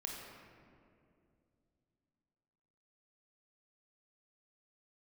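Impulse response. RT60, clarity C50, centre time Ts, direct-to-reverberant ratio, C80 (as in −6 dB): 2.5 s, 1.0 dB, 93 ms, −1.0 dB, 2.5 dB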